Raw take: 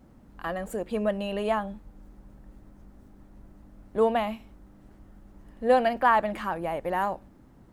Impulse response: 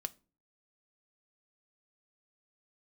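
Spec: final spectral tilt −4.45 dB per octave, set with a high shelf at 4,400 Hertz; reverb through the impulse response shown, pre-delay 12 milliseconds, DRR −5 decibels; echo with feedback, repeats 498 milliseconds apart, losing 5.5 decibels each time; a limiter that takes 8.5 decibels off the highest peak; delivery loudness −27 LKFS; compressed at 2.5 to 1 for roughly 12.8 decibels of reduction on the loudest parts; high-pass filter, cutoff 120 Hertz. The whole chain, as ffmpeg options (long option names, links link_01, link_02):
-filter_complex "[0:a]highpass=120,highshelf=frequency=4400:gain=-5,acompressor=threshold=-36dB:ratio=2.5,alimiter=level_in=6.5dB:limit=-24dB:level=0:latency=1,volume=-6.5dB,aecho=1:1:498|996|1494|1992|2490|2988|3486:0.531|0.281|0.149|0.079|0.0419|0.0222|0.0118,asplit=2[link_01][link_02];[1:a]atrim=start_sample=2205,adelay=12[link_03];[link_02][link_03]afir=irnorm=-1:irlink=0,volume=6.5dB[link_04];[link_01][link_04]amix=inputs=2:normalize=0,volume=7.5dB"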